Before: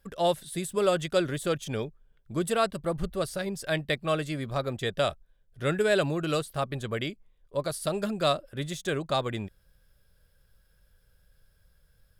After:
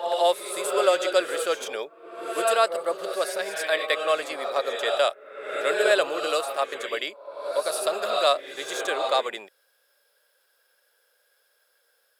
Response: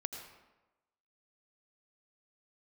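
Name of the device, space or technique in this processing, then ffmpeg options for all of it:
ghost voice: -filter_complex "[0:a]areverse[link_01];[1:a]atrim=start_sample=2205[link_02];[link_01][link_02]afir=irnorm=-1:irlink=0,areverse,highpass=frequency=480:width=0.5412,highpass=frequency=480:width=1.3066,lowshelf=frequency=220:gain=3.5,volume=6.5dB"

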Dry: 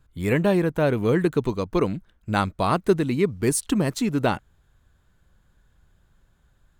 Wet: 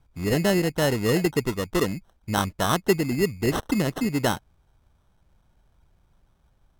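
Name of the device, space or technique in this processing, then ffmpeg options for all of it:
crushed at another speed: -af "asetrate=55125,aresample=44100,acrusher=samples=15:mix=1:aa=0.000001,asetrate=35280,aresample=44100,volume=-1.5dB"

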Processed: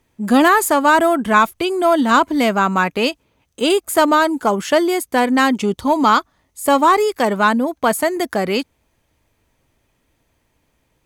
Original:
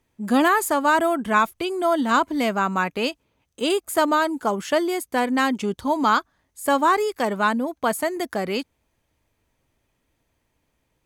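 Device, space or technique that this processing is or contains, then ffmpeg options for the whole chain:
parallel distortion: -filter_complex "[0:a]asettb=1/sr,asplit=3[link_01][link_02][link_03];[link_01]atrim=end=5.594[link_04];[link_02]atrim=start=5.59:end=7,asetpts=PTS-STARTPTS,afade=type=in:duration=0.004:curve=qsin,afade=type=out:start_time=1.406:duration=0.004:curve=qsin,bandreject=frequency=1600:width=7.4[link_05];[link_03]atrim=start=6.996[link_06];[link_04][link_05]acrossfade=duration=0.004:curve1=hsin:curve2=qsin[link_07];[link_07][link_06]acrossfade=duration=0.004:curve1=qsin:curve2=hsin,asplit=2[link_08][link_09];[link_09]asoftclip=type=hard:threshold=-18.5dB,volume=-11.5dB[link_10];[link_08][link_10]amix=inputs=2:normalize=0,volume=4.5dB"

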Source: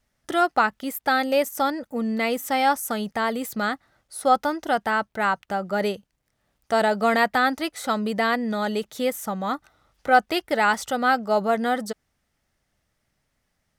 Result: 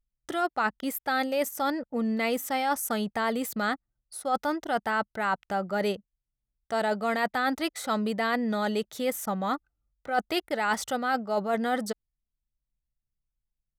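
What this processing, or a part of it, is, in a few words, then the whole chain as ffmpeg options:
compression on the reversed sound: -af "anlmdn=0.1,areverse,acompressor=threshold=-22dB:ratio=10,areverse,volume=-1dB"

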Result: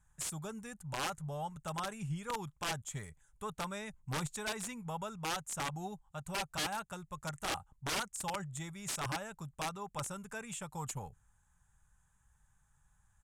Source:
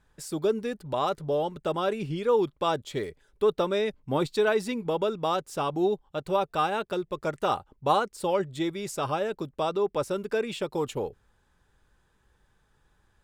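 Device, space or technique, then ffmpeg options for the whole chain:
overflowing digital effects unit: -af "firequalizer=gain_entry='entry(150,0);entry(320,-22);entry(450,-20);entry(790,-4);entry(1300,-4);entry(4600,-14);entry(6700,9)':delay=0.05:min_phase=1,aeval=exprs='(mod(20*val(0)+1,2)-1)/20':channel_layout=same,lowpass=9900,volume=-3dB"

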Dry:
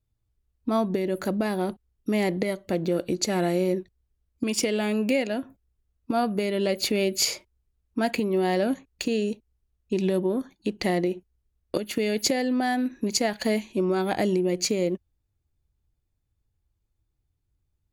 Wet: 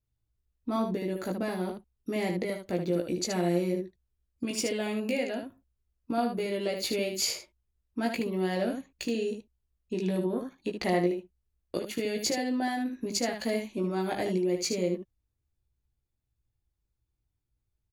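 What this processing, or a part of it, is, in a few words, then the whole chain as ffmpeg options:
slapback doubling: -filter_complex "[0:a]asettb=1/sr,asplit=3[link_01][link_02][link_03];[link_01]atrim=end=10.334[link_04];[link_02]atrim=start=10.33:end=11.16,asetpts=PTS-STARTPTS,afade=type=in:duration=0.004:curve=qsin,afade=type=out:start_time=0.826:duration=0.004:curve=qsin,equalizer=frequency=1100:width_type=o:width=2.1:gain=5[link_05];[link_03]atrim=start=11.156[link_06];[link_04][link_05]acrossfade=duration=0.004:curve1=hsin:curve2=qsin[link_07];[link_07][link_06]acrossfade=duration=0.004:curve1=qsin:curve2=hsin,asplit=3[link_08][link_09][link_10];[link_09]adelay=17,volume=-4dB[link_11];[link_10]adelay=75,volume=-6dB[link_12];[link_08][link_11][link_12]amix=inputs=3:normalize=0,volume=-7dB"

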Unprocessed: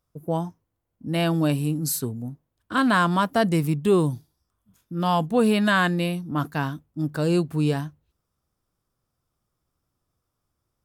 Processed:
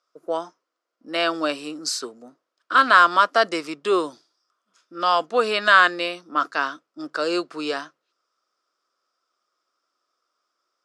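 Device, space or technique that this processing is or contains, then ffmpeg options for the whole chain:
phone speaker on a table: -af "highpass=frequency=400:width=0.5412,highpass=frequency=400:width=1.3066,equalizer=frequency=440:width_type=q:width=4:gain=-4,equalizer=frequency=840:width_type=q:width=4:gain=-8,equalizer=frequency=1300:width_type=q:width=4:gain=9,equalizer=frequency=5000:width_type=q:width=4:gain=7,lowpass=frequency=7000:width=0.5412,lowpass=frequency=7000:width=1.3066,volume=5dB"

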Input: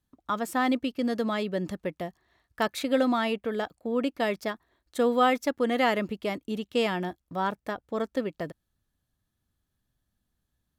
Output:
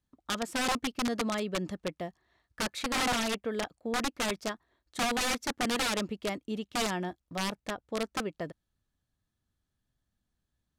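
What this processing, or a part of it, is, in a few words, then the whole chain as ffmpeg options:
overflowing digital effects unit: -af "aeval=exprs='(mod(11.2*val(0)+1,2)-1)/11.2':channel_layout=same,lowpass=9500,volume=-3dB"

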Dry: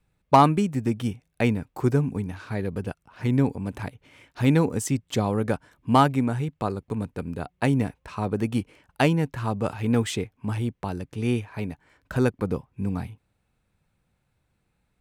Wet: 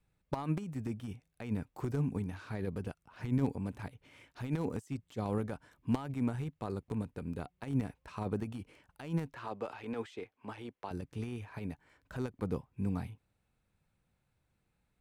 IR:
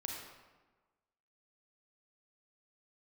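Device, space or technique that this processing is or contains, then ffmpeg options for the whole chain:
de-esser from a sidechain: -filter_complex "[0:a]asettb=1/sr,asplit=3[link_01][link_02][link_03];[link_01]atrim=end=9.344[link_04];[link_02]atrim=start=9.34:end=10.91,asetpts=PTS-STARTPTS,afade=type=in:duration=0.004:curve=qsin,afade=type=out:start_time=1.566:duration=0.004:curve=qsin,acrossover=split=310 5600:gain=0.126 1 0.224[link_05][link_06][link_07];[link_05][link_06][link_07]amix=inputs=3:normalize=0[link_08];[link_03]atrim=start=10.906[link_09];[link_04][link_08]acrossfade=duration=0.004:curve1=hsin:curve2=qsin[link_10];[link_10][link_09]acrossfade=duration=0.004:curve1=qsin:curve2=hsin,asplit=2[link_11][link_12];[link_12]highpass=4700,apad=whole_len=661609[link_13];[link_11][link_13]sidechaincompress=threshold=-53dB:ratio=8:attack=1.2:release=36,volume=-6dB"

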